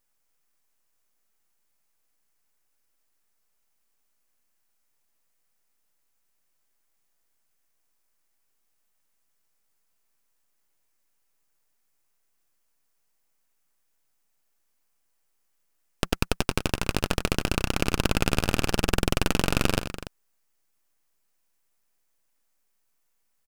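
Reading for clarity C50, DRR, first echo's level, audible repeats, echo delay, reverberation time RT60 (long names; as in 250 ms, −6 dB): no reverb audible, no reverb audible, −11.5 dB, 2, 94 ms, no reverb audible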